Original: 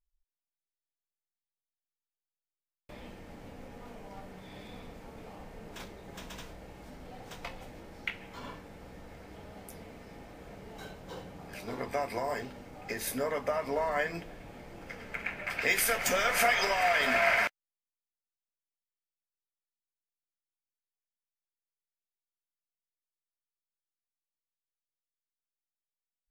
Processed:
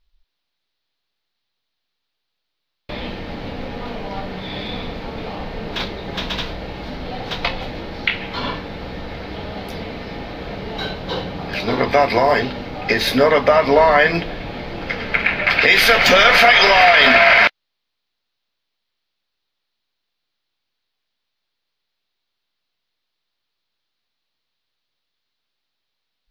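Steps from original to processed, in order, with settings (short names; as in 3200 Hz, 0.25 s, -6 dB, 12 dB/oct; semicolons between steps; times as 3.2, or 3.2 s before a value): resonant high shelf 5800 Hz -13 dB, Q 3; maximiser +19.5 dB; gain -1 dB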